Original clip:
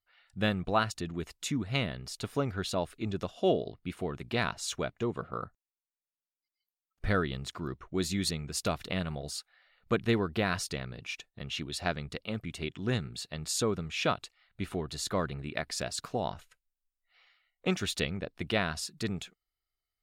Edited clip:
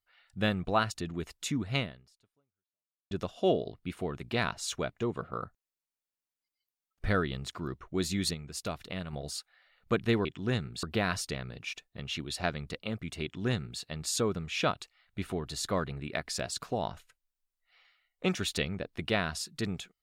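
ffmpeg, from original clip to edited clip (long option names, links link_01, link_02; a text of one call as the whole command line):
ffmpeg -i in.wav -filter_complex "[0:a]asplit=6[link_01][link_02][link_03][link_04][link_05][link_06];[link_01]atrim=end=3.11,asetpts=PTS-STARTPTS,afade=type=out:start_time=1.79:duration=1.32:curve=exp[link_07];[link_02]atrim=start=3.11:end=8.342,asetpts=PTS-STARTPTS,afade=type=in:duration=0.004:curve=hsin[link_08];[link_03]atrim=start=8.338:end=9.132,asetpts=PTS-STARTPTS,volume=-5dB[link_09];[link_04]atrim=start=9.128:end=10.252[link_10];[link_05]atrim=start=12.648:end=13.232[link_11];[link_06]atrim=start=10.248[link_12];[link_07][link_08]concat=n=2:v=0:a=1[link_13];[link_13][link_09]acrossfade=duration=0.004:curve1=hsin:curve2=hsin[link_14];[link_14][link_10]acrossfade=duration=0.004:curve1=hsin:curve2=hsin[link_15];[link_15][link_11]acrossfade=duration=0.004:curve1=hsin:curve2=hsin[link_16];[link_16][link_12]acrossfade=duration=0.004:curve1=hsin:curve2=hsin" out.wav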